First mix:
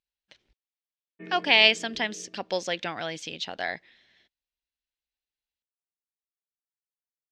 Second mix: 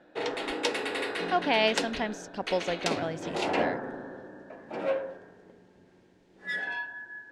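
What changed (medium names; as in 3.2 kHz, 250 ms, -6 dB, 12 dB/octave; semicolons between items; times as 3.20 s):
first sound: unmuted; master: remove frequency weighting D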